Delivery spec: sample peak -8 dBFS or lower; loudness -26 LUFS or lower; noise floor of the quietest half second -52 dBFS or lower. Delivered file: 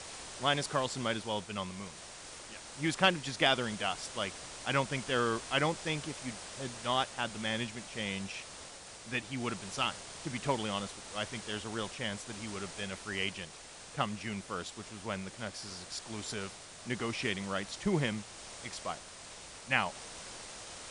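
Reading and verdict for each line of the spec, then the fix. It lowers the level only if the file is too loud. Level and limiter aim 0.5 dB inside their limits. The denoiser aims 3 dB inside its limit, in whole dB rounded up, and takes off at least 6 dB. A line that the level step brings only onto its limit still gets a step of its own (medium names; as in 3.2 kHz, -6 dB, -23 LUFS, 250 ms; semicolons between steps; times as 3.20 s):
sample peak -12.5 dBFS: pass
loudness -35.5 LUFS: pass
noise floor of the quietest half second -50 dBFS: fail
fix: noise reduction 6 dB, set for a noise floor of -50 dBFS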